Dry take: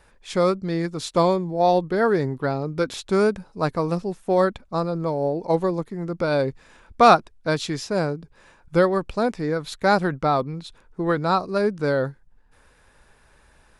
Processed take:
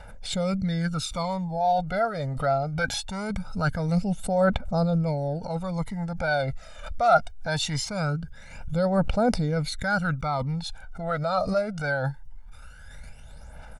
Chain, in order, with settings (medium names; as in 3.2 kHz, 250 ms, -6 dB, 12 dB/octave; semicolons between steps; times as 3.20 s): reverse; compression 12:1, threshold -26 dBFS, peak gain reduction 18 dB; reverse; phaser 0.22 Hz, delay 1.7 ms, feedback 65%; comb 1.4 ms, depth 91%; swell ahead of each attack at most 75 dB/s